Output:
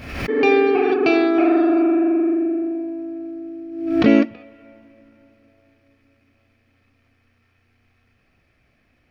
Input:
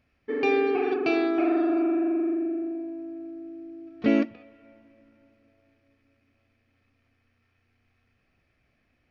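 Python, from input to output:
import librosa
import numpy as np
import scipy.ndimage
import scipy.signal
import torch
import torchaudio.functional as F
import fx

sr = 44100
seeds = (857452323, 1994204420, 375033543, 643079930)

y = fx.pre_swell(x, sr, db_per_s=60.0)
y = F.gain(torch.from_numpy(y), 7.5).numpy()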